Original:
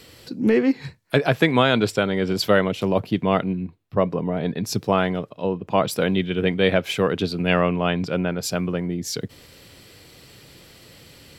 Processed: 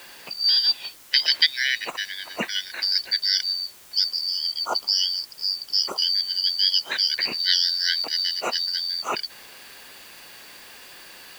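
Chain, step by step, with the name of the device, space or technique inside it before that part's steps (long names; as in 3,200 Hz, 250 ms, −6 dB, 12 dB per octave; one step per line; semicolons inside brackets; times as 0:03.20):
0:01.46–0:02.79: guitar amp tone stack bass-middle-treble 10-0-10
0:04.06–0:06.91: gain on a spectral selection 1,900–4,400 Hz −20 dB
split-band scrambled radio (band-splitting scrambler in four parts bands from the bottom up 4321; band-pass filter 370–3,000 Hz; white noise bed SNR 23 dB)
level +6.5 dB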